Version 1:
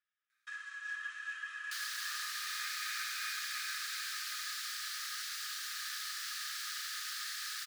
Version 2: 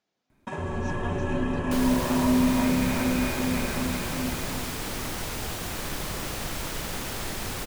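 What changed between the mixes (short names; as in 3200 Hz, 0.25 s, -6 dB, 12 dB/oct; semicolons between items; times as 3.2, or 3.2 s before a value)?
speech: remove polynomial smoothing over 25 samples; master: remove rippled Chebyshev high-pass 1200 Hz, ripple 9 dB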